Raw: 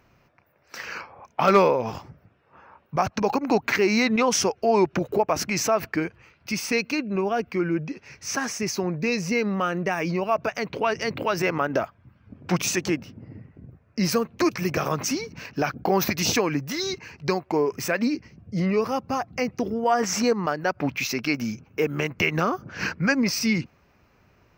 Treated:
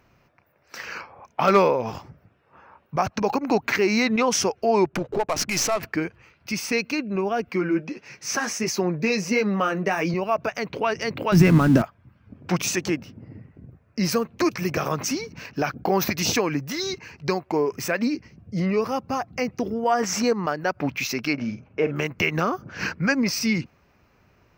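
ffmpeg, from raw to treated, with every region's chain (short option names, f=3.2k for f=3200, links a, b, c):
-filter_complex "[0:a]asettb=1/sr,asplit=3[a][b][c];[a]atrim=end=4.864[d];[b]atrim=start=4.86:end=5.83,asetpts=PTS-STARTPTS,afade=t=in:d=0.004:c=qsin,afade=t=out:st=0.966:d=0.004:c=qsin,highshelf=f=2.7k:g=8.5,adynamicsmooth=sensitivity=7.5:basefreq=890,aeval=exprs='(tanh(5.62*val(0)+0.35)-tanh(0.35))/5.62':c=same[e];[c]atrim=start=5.826[f];[d][e]acrossfade=d=0.004:c1=hsin:c2=qsin[g];[g][f]acrossfade=d=0.004:c1=qsin:c2=hsin,asettb=1/sr,asplit=3[h][i][j];[h]atrim=end=7.494[k];[i]atrim=start=7.49:end=10.14,asetpts=PTS-STARTPTS,afade=t=in:d=0.004:c=qsin,afade=t=out:st=2.646:d=0.004:c=qsin,highpass=150,acontrast=54,flanger=delay=5.5:depth=4.6:regen=-40:speed=1.5:shape=sinusoidal[l];[j]atrim=start=10.136[m];[k][l]acrossfade=d=0.004:c1=hsin:c2=qsin[n];[n][m]acrossfade=d=0.004:c1=qsin:c2=hsin,asettb=1/sr,asplit=3[o][p][q];[o]atrim=end=11.324[r];[p]atrim=start=11.32:end=11.82,asetpts=PTS-STARTPTS,afade=t=in:d=0.004:c=qsin,afade=t=out:st=0.496:d=0.004:c=qsin,aeval=exprs='val(0)+0.5*0.0335*sgn(val(0))':c=same,lowshelf=f=330:t=q:w=1.5:g=13[s];[q]atrim=start=11.816[t];[r][s]acrossfade=d=0.004:c1=hsin:c2=qsin[u];[u][t]acrossfade=d=0.004:c1=qsin:c2=hsin,asettb=1/sr,asplit=3[v][w][x];[v]atrim=end=21.334[y];[w]atrim=start=21.33:end=21.96,asetpts=PTS-STARTPTS,afade=t=in:d=0.004:c=qsin,afade=t=out:st=0.626:d=0.004:c=qsin,lowpass=3.2k,equalizer=f=610:t=o:w=0.24:g=8.5,asplit=2[z][aa];[aa]adelay=48,volume=-12dB[ab];[z][ab]amix=inputs=2:normalize=0,atrim=end_sample=27783[ac];[x]atrim=start=21.956[ad];[y][ac]acrossfade=d=0.004:c1=hsin:c2=qsin[ae];[ae][ad]acrossfade=d=0.004:c1=qsin:c2=hsin"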